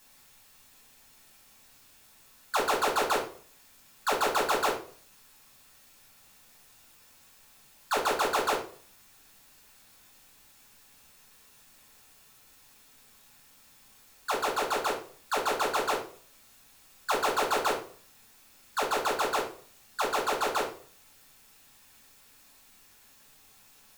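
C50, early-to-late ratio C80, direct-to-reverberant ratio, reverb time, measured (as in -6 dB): 7.5 dB, 13.0 dB, -3.5 dB, 0.45 s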